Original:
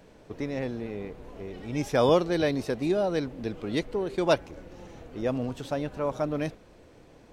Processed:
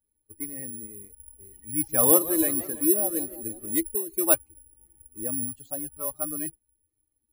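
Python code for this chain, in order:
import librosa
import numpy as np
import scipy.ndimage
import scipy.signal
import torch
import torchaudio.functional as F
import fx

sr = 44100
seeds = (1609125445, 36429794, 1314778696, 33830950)

y = fx.bin_expand(x, sr, power=2.0)
y = fx.high_shelf(y, sr, hz=4600.0, db=-8.5)
y = (np.kron(scipy.signal.resample_poly(y, 1, 4), np.eye(4)[0]) * 4)[:len(y)]
y = fx.peak_eq(y, sr, hz=170.0, db=-11.0, octaves=0.29)
y = fx.small_body(y, sr, hz=(330.0, 1200.0), ring_ms=90, db=11)
y = fx.echo_warbled(y, sr, ms=166, feedback_pct=62, rate_hz=2.8, cents=182, wet_db=-15.0, at=(1.72, 3.76))
y = y * 10.0 ** (-1.0 / 20.0)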